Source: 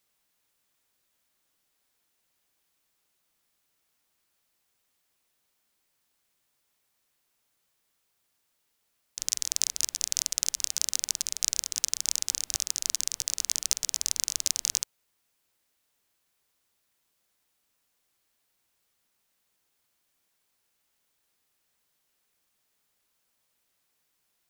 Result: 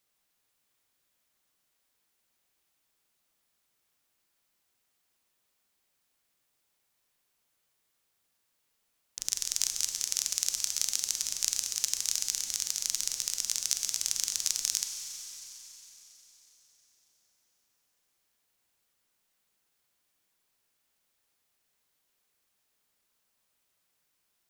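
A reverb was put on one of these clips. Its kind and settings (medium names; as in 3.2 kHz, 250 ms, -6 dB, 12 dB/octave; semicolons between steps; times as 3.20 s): Schroeder reverb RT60 4 s, combs from 31 ms, DRR 5.5 dB; trim -2.5 dB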